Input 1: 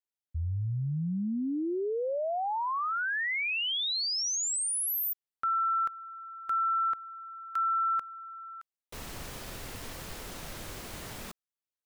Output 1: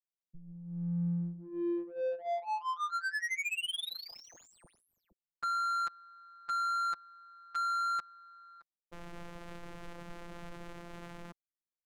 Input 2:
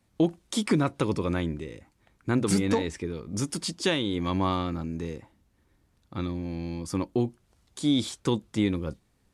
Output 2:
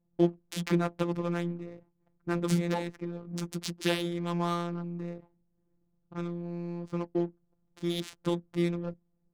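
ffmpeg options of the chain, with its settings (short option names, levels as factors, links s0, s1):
-af "afftfilt=real='hypot(re,im)*cos(PI*b)':imag='0':win_size=1024:overlap=0.75,adynamicsmooth=sensitivity=8:basefreq=520"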